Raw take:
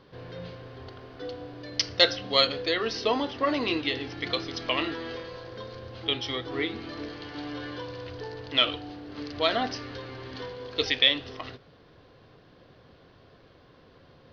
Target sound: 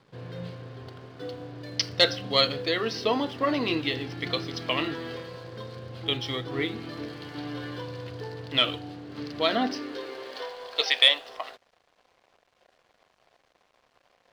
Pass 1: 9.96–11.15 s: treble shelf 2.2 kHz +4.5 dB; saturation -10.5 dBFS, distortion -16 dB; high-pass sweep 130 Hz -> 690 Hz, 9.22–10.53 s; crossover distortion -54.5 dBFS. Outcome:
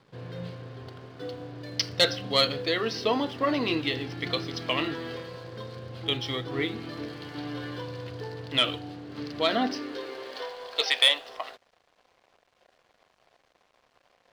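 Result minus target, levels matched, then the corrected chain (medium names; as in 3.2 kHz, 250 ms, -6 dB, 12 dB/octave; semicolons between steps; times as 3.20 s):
saturation: distortion +10 dB
9.96–11.15 s: treble shelf 2.2 kHz +4.5 dB; saturation -3.5 dBFS, distortion -27 dB; high-pass sweep 130 Hz -> 690 Hz, 9.22–10.53 s; crossover distortion -54.5 dBFS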